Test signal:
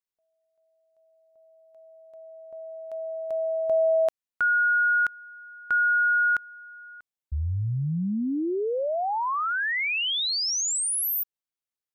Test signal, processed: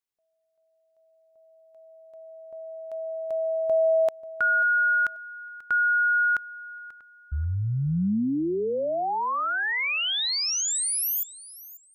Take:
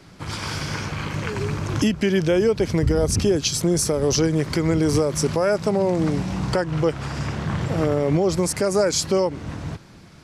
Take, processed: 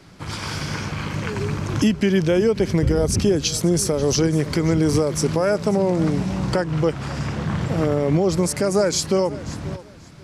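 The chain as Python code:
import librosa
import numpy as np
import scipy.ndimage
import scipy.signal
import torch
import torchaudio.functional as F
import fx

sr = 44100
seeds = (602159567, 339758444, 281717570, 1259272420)

p1 = fx.dynamic_eq(x, sr, hz=200.0, q=1.7, threshold_db=-35.0, ratio=3.0, max_db=3)
y = p1 + fx.echo_feedback(p1, sr, ms=538, feedback_pct=22, wet_db=-18.0, dry=0)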